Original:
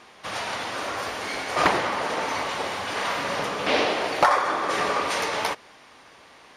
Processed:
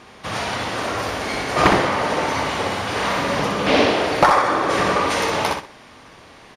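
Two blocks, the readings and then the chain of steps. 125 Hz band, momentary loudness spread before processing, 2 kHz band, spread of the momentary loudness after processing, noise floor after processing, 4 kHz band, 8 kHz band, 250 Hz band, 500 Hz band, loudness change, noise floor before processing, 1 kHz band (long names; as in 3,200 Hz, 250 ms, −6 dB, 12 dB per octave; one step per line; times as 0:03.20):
+13.0 dB, 8 LU, +4.5 dB, 8 LU, −45 dBFS, +4.5 dB, +4.5 dB, +10.0 dB, +6.5 dB, +5.5 dB, −51 dBFS, +5.0 dB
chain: low-shelf EQ 270 Hz +11.5 dB
repeating echo 62 ms, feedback 25%, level −5 dB
level +3 dB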